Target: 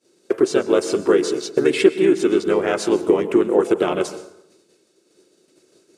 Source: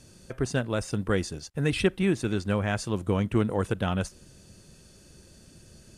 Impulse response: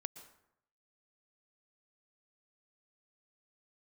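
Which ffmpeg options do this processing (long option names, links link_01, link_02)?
-filter_complex "[0:a]agate=range=-33dB:threshold=-40dB:ratio=3:detection=peak,acompressor=threshold=-29dB:ratio=4,asplit=2[link_01][link_02];[link_02]asetrate=37084,aresample=44100,atempo=1.18921,volume=-2dB[link_03];[link_01][link_03]amix=inputs=2:normalize=0,highpass=frequency=370:width_type=q:width=3.9,asplit=2[link_04][link_05];[1:a]atrim=start_sample=2205,asetrate=43659,aresample=44100[link_06];[link_05][link_06]afir=irnorm=-1:irlink=0,volume=11.5dB[link_07];[link_04][link_07]amix=inputs=2:normalize=0,volume=-2dB"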